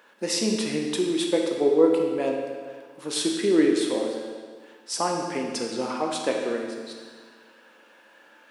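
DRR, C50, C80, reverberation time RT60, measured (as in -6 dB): 0.5 dB, 2.5 dB, 4.0 dB, 1.7 s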